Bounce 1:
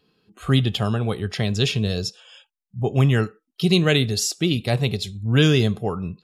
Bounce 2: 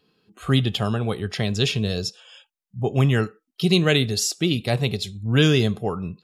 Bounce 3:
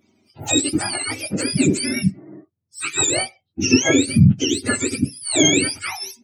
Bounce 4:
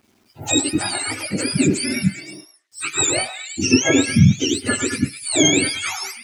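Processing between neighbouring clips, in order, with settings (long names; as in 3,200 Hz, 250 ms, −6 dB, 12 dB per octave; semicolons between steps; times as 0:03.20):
low-shelf EQ 88 Hz −5 dB
frequency axis turned over on the octave scale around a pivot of 1,000 Hz; level +4 dB
bit reduction 10 bits; echo through a band-pass that steps 104 ms, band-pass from 1,100 Hz, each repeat 0.7 octaves, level −4 dB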